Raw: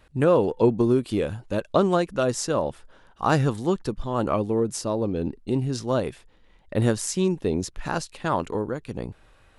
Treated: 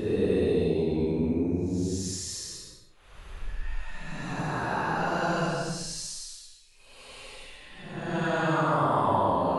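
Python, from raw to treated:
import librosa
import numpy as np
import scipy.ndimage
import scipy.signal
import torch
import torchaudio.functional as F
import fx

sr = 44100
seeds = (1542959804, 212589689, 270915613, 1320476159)

y = fx.paulstretch(x, sr, seeds[0], factor=10.0, window_s=0.1, from_s=7.43)
y = F.gain(torch.from_numpy(y), -2.0).numpy()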